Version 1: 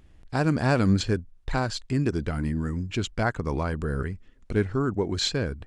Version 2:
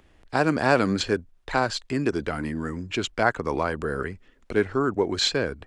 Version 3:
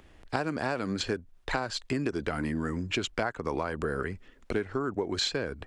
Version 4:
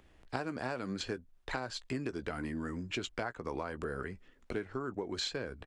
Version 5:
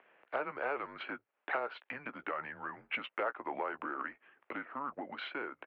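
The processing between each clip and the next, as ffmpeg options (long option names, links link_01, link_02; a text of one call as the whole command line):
ffmpeg -i in.wav -filter_complex "[0:a]bass=frequency=250:gain=-11,treble=frequency=4000:gain=-4,acrossover=split=150|1100[link_01][link_02][link_03];[link_01]alimiter=level_in=15.5dB:limit=-24dB:level=0:latency=1,volume=-15.5dB[link_04];[link_04][link_02][link_03]amix=inputs=3:normalize=0,volume=5.5dB" out.wav
ffmpeg -i in.wav -af "acompressor=threshold=-28dB:ratio=12,volume=2dB" out.wav
ffmpeg -i in.wav -filter_complex "[0:a]asplit=2[link_01][link_02];[link_02]adelay=16,volume=-13dB[link_03];[link_01][link_03]amix=inputs=2:normalize=0,volume=-7dB" out.wav
ffmpeg -i in.wav -af "asoftclip=type=tanh:threshold=-24dB,highpass=frequency=600:width_type=q:width=0.5412,highpass=frequency=600:width_type=q:width=1.307,lowpass=frequency=2800:width_type=q:width=0.5176,lowpass=frequency=2800:width_type=q:width=0.7071,lowpass=frequency=2800:width_type=q:width=1.932,afreqshift=-140,volume=5.5dB" out.wav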